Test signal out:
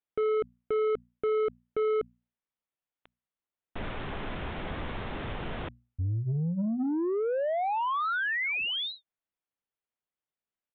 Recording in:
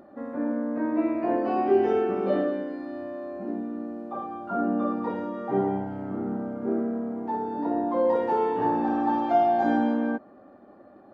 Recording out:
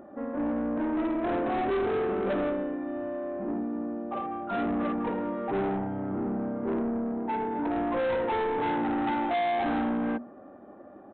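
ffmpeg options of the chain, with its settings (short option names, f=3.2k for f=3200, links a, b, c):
-af "lowpass=f=2.2k:p=1,bandreject=f=60:t=h:w=6,bandreject=f=120:t=h:w=6,bandreject=f=180:t=h:w=6,bandreject=f=240:t=h:w=6,aresample=8000,asoftclip=type=tanh:threshold=-28dB,aresample=44100,volume=3dB"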